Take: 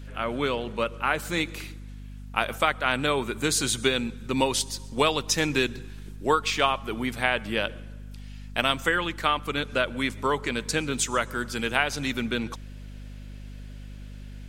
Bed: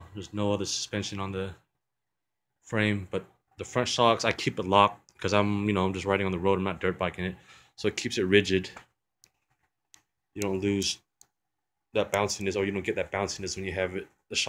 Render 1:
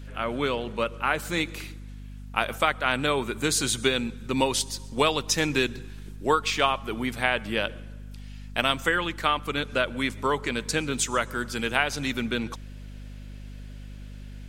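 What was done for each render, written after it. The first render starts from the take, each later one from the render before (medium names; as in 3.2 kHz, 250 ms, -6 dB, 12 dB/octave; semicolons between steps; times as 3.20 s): no audible change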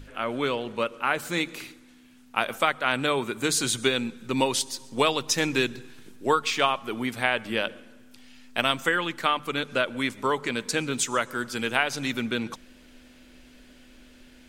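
hum notches 50/100/150/200 Hz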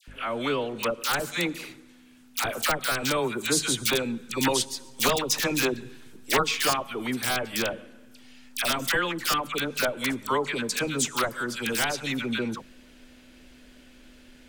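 integer overflow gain 13 dB; phase dispersion lows, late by 78 ms, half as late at 1.3 kHz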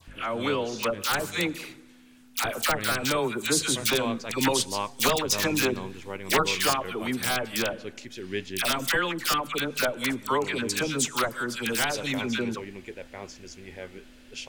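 add bed -11 dB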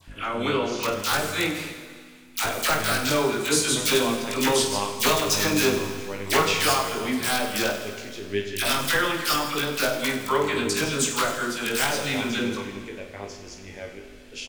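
on a send: reverse bouncing-ball echo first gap 20 ms, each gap 1.5×, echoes 5; on the sum: plate-style reverb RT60 1.9 s, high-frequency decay 1×, DRR 7 dB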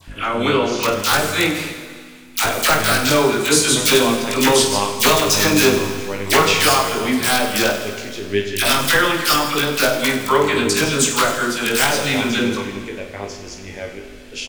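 trim +7.5 dB; peak limiter -2 dBFS, peak gain reduction 2.5 dB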